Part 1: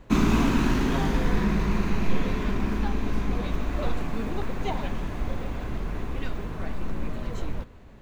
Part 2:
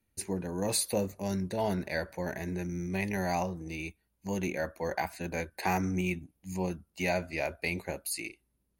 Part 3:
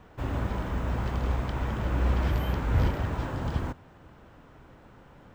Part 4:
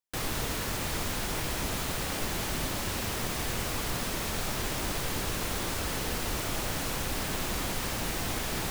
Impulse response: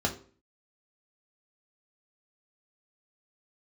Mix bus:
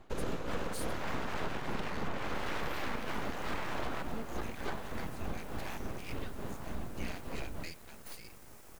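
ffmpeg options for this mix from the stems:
-filter_complex "[0:a]tremolo=f=3.4:d=0.63,volume=-6.5dB,asplit=2[a][b];[b]volume=-12.5dB[c];[1:a]highpass=f=870:w=0.5412,highpass=f=870:w=1.3066,volume=-9.5dB,asplit=2[d][e];[2:a]highpass=270,equalizer=f=1k:w=0.44:g=7.5,adelay=300,volume=-0.5dB[f];[3:a]equalizer=f=3.4k:t=o:w=1.3:g=-11.5,aeval=exprs='abs(val(0))':c=same,adelay=2200,volume=-19dB[g];[e]apad=whole_len=248896[h];[f][h]sidechaincompress=threshold=-48dB:ratio=8:attack=6.8:release=143[i];[4:a]atrim=start_sample=2205[j];[c][j]afir=irnorm=-1:irlink=0[k];[a][d][i][g][k]amix=inputs=5:normalize=0,aeval=exprs='abs(val(0))':c=same,acompressor=threshold=-30dB:ratio=6"

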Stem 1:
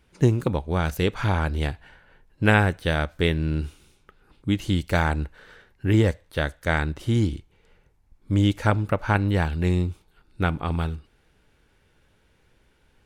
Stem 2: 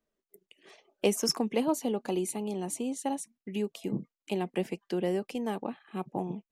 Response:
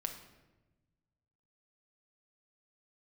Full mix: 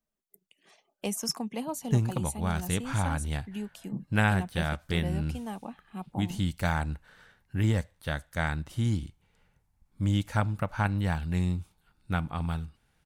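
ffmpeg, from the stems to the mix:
-filter_complex "[0:a]lowshelf=f=71:g=-8.5,adelay=1700,volume=-2.5dB[a];[1:a]volume=-0.5dB[b];[a][b]amix=inputs=2:normalize=0,firequalizer=gain_entry='entry(180,0);entry(370,-12);entry(730,-3);entry(2300,-5);entry(8800,1)':delay=0.05:min_phase=1"

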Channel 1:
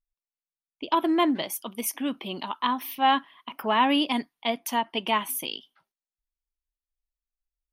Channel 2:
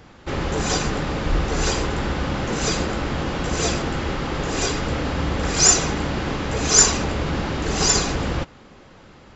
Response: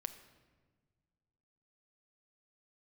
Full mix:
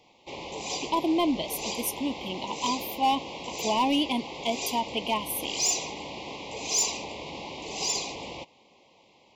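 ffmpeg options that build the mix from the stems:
-filter_complex "[0:a]volume=16dB,asoftclip=hard,volume=-16dB,volume=-1.5dB[a];[1:a]acontrast=72,highpass=f=1.3k:p=1,highshelf=f=5.6k:g=-11.5,volume=-9dB[b];[a][b]amix=inputs=2:normalize=0,asuperstop=centerf=1500:order=8:qfactor=1.3"

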